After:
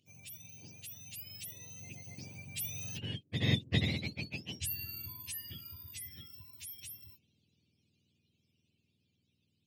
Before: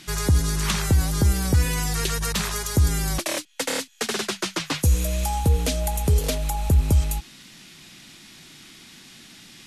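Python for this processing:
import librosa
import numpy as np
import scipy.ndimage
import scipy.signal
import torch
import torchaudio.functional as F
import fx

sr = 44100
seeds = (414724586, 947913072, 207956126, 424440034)

y = fx.octave_mirror(x, sr, pivot_hz=950.0)
y = fx.doppler_pass(y, sr, speed_mps=24, closest_m=1.7, pass_at_s=3.64)
y = fx.high_shelf_res(y, sr, hz=1900.0, db=11.5, q=3.0)
y = y * 10.0 ** (-2.0 / 20.0)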